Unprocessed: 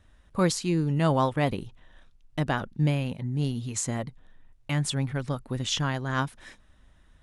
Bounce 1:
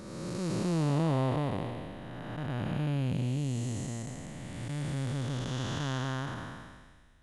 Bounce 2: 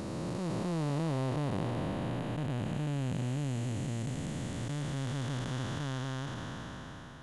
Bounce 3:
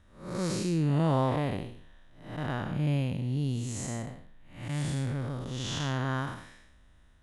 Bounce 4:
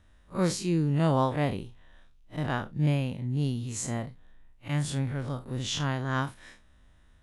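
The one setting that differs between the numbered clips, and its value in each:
spectrum smeared in time, width: 720, 1,760, 258, 86 milliseconds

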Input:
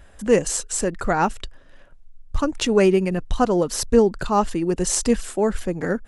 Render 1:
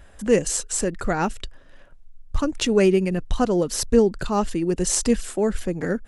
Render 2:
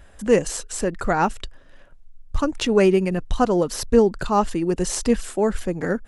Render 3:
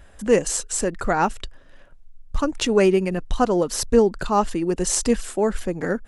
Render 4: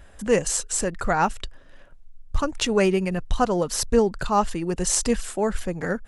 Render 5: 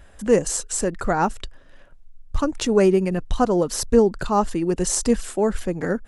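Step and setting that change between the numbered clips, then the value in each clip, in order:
dynamic equaliser, frequency: 960, 7,700, 100, 310, 2,700 Hertz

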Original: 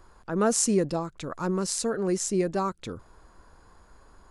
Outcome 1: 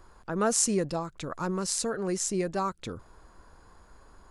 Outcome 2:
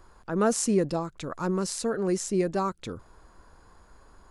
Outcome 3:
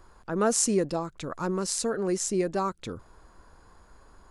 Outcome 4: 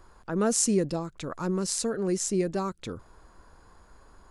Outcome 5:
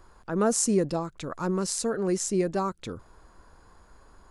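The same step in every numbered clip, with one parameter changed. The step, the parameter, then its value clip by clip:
dynamic equaliser, frequency: 290, 7,200, 110, 990, 2,800 Hertz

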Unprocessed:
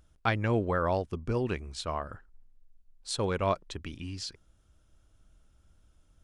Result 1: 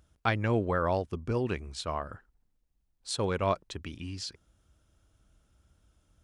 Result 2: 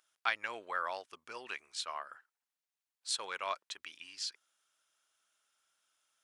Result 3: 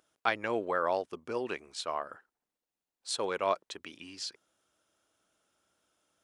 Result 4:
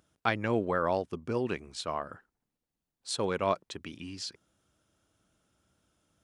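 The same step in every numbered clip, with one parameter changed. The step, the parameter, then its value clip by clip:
high-pass filter, corner frequency: 44, 1,300, 410, 160 Hertz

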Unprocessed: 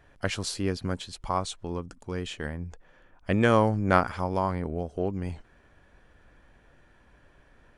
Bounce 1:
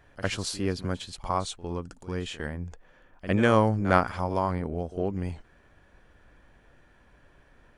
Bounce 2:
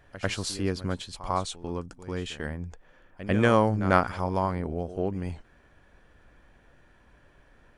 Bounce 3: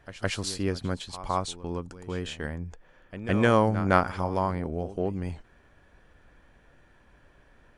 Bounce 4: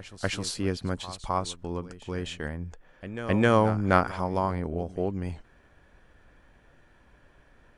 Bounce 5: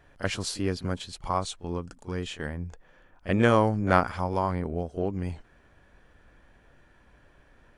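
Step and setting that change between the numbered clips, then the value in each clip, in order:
echo ahead of the sound, delay time: 56, 96, 162, 262, 34 milliseconds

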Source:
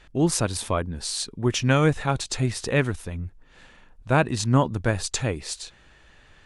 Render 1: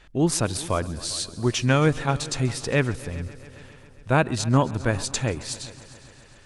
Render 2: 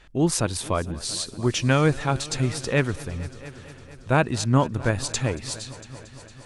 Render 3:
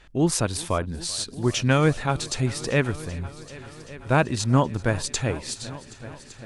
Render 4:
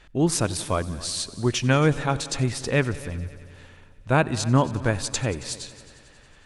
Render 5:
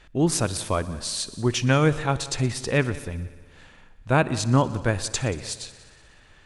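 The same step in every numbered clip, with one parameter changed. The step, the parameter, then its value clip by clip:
echo machine with several playback heads, delay time: 135, 228, 387, 91, 60 milliseconds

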